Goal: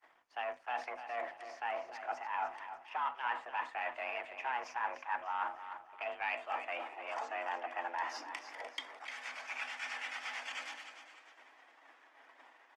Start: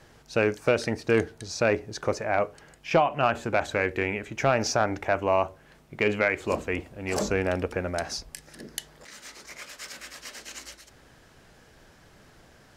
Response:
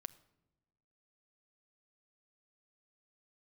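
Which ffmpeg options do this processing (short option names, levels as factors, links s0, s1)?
-filter_complex "[0:a]aeval=exprs='if(lt(val(0),0),0.447*val(0),val(0))':c=same,bandreject=f=3800:w=6.5,agate=range=0.0224:threshold=0.00355:ratio=3:detection=peak,acrossover=split=8500[s0][s1];[s1]acompressor=threshold=0.00141:ratio=4:attack=1:release=60[s2];[s0][s2]amix=inputs=2:normalize=0,highshelf=f=7600:g=-5.5,areverse,acompressor=threshold=0.01:ratio=8,areverse,acrossover=split=410 3100:gain=0.112 1 0.141[s3][s4][s5];[s3][s4][s5]amix=inputs=3:normalize=0,afreqshift=250,aecho=1:1:299|598|897|1196:0.316|0.117|0.0433|0.016[s6];[1:a]atrim=start_sample=2205,atrim=end_sample=4410[s7];[s6][s7]afir=irnorm=-1:irlink=0,volume=4.22" -ar 48000 -c:a libopus -b:a 20k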